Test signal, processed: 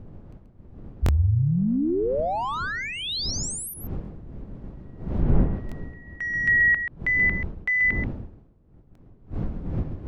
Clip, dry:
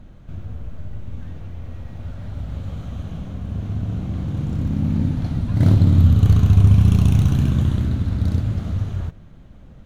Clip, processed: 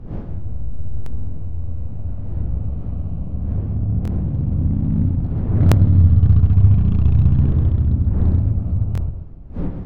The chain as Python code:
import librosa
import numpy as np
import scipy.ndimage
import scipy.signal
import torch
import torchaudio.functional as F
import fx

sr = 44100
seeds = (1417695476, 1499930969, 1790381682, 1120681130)

p1 = fx.wiener(x, sr, points=25)
p2 = fx.dmg_wind(p1, sr, seeds[0], corner_hz=230.0, level_db=-34.0)
p3 = fx.rider(p2, sr, range_db=5, speed_s=2.0)
p4 = p2 + (p3 * 10.0 ** (2.0 / 20.0))
p5 = fx.low_shelf(p4, sr, hz=85.0, db=9.5)
p6 = p5 + fx.echo_single(p5, sr, ms=133, db=-8.5, dry=0)
p7 = fx.env_lowpass_down(p6, sr, base_hz=2400.0, full_db=-4.5)
p8 = fx.buffer_glitch(p7, sr, at_s=(1.04, 4.03, 5.67, 8.93), block=1024, repeats=1)
y = p8 * 10.0 ** (-10.5 / 20.0)